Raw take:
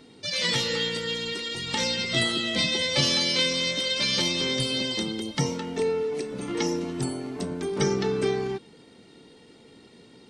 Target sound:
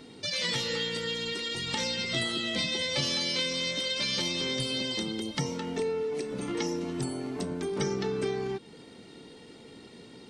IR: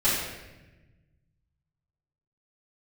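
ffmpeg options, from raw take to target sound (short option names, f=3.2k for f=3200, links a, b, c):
-af "acompressor=threshold=-36dB:ratio=2,volume=2.5dB"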